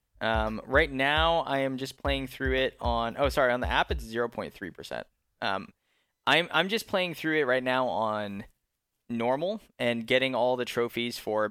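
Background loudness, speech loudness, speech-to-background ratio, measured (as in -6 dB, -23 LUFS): -40.5 LUFS, -28.0 LUFS, 12.5 dB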